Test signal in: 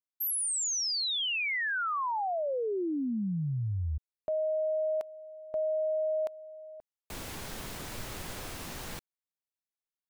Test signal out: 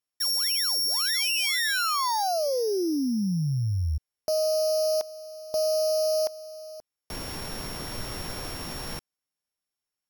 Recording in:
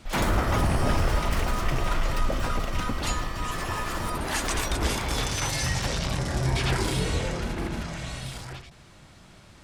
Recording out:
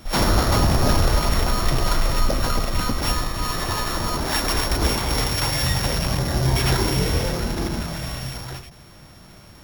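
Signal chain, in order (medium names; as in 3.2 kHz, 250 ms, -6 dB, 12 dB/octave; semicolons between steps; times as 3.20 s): sorted samples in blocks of 8 samples; trim +5.5 dB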